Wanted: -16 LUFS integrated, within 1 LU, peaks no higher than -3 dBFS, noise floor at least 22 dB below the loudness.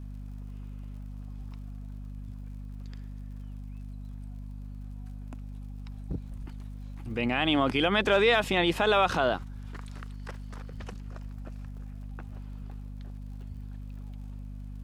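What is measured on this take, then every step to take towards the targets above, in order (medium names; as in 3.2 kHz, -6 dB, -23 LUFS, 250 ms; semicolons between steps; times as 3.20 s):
tick rate 57 per s; hum 50 Hz; highest harmonic 250 Hz; hum level -37 dBFS; loudness -26.5 LUFS; peak level -11.0 dBFS; loudness target -16.0 LUFS
-> de-click; hum notches 50/100/150/200/250 Hz; trim +10.5 dB; peak limiter -3 dBFS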